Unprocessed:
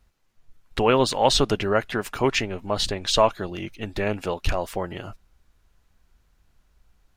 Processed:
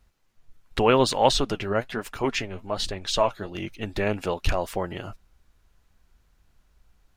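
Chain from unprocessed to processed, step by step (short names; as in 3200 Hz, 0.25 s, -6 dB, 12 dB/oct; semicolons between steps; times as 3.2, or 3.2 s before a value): 1.31–3.55 flange 1.2 Hz, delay 0.4 ms, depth 10 ms, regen +56%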